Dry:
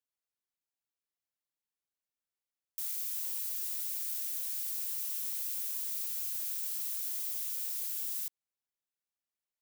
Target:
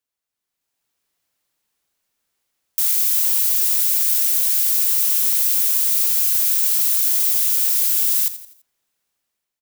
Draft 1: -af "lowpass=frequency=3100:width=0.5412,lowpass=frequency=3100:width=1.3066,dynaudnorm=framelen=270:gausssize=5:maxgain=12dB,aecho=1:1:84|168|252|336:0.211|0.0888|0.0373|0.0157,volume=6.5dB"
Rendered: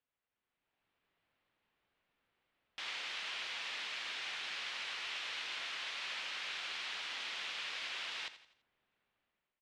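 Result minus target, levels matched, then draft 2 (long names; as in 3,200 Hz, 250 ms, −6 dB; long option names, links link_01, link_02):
4,000 Hz band +16.5 dB
-af "dynaudnorm=framelen=270:gausssize=5:maxgain=12dB,aecho=1:1:84|168|252|336:0.211|0.0888|0.0373|0.0157,volume=6.5dB"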